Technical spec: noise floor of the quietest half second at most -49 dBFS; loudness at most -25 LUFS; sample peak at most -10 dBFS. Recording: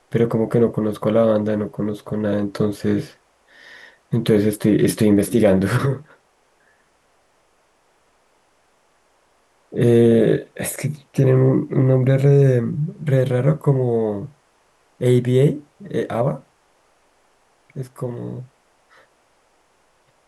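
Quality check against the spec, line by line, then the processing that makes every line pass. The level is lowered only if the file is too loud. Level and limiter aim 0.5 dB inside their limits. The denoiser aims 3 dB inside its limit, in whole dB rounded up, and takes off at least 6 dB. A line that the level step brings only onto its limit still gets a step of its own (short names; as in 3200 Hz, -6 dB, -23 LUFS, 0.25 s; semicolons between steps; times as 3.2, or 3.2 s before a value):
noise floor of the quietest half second -61 dBFS: OK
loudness -19.0 LUFS: fail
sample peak -5.0 dBFS: fail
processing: gain -6.5 dB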